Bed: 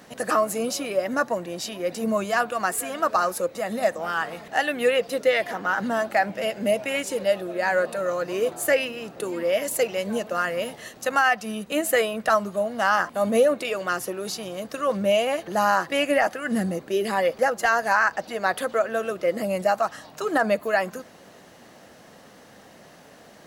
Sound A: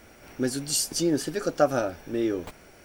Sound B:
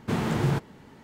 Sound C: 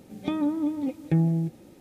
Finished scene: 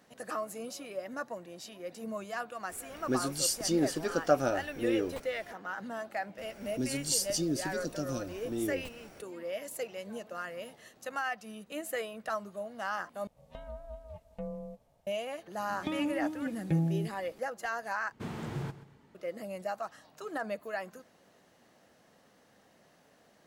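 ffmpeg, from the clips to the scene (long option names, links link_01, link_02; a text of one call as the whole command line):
ffmpeg -i bed.wav -i cue0.wav -i cue1.wav -i cue2.wav -filter_complex "[1:a]asplit=2[link_01][link_02];[3:a]asplit=2[link_03][link_04];[0:a]volume=-14.5dB[link_05];[link_02]acrossover=split=350|3000[link_06][link_07][link_08];[link_07]acompressor=threshold=-47dB:ratio=6:attack=3.2:release=140:knee=2.83:detection=peak[link_09];[link_06][link_09][link_08]amix=inputs=3:normalize=0[link_10];[link_03]aeval=exprs='val(0)*sin(2*PI*350*n/s)':channel_layout=same[link_11];[link_04]equalizer=frequency=310:width_type=o:width=3:gain=-4.5[link_12];[2:a]aecho=1:1:130|260|390:0.168|0.0537|0.0172[link_13];[link_05]asplit=3[link_14][link_15][link_16];[link_14]atrim=end=13.274[link_17];[link_11]atrim=end=1.8,asetpts=PTS-STARTPTS,volume=-15dB[link_18];[link_15]atrim=start=15.066:end=18.124[link_19];[link_13]atrim=end=1.03,asetpts=PTS-STARTPTS,volume=-12.5dB[link_20];[link_16]atrim=start=19.146[link_21];[link_01]atrim=end=2.84,asetpts=PTS-STARTPTS,volume=-4dB,afade=type=in:duration=0.004:curve=hsin,afade=type=out:start_time=2.836:duration=0.004:curve=hsin,adelay=2690[link_22];[link_10]atrim=end=2.84,asetpts=PTS-STARTPTS,volume=-3.5dB,afade=type=in:duration=0.004:curve=hsin,afade=type=out:start_time=2.836:duration=0.004:curve=hsin,adelay=6380[link_23];[link_12]atrim=end=1.8,asetpts=PTS-STARTPTS,volume=-3dB,afade=type=in:duration=0.004:curve=hsin,afade=type=out:start_time=1.796:duration=0.004:curve=hsin,adelay=15590[link_24];[link_17][link_18]acrossfade=duration=0.004:curve1=hsin:curve2=hsin[link_25];[link_25][link_19]acrossfade=duration=0.004:curve1=hsin:curve2=hsin[link_26];[link_26][link_20]acrossfade=duration=0.004:curve1=hsin:curve2=hsin[link_27];[link_27][link_21]acrossfade=duration=0.004:curve1=hsin:curve2=hsin[link_28];[link_28][link_22][link_23][link_24]amix=inputs=4:normalize=0" out.wav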